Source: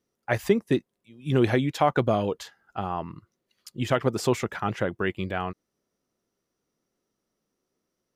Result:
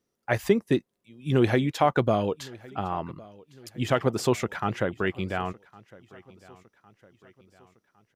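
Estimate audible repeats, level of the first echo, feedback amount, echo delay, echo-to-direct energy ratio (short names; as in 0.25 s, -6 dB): 2, -23.0 dB, 49%, 1.108 s, -22.0 dB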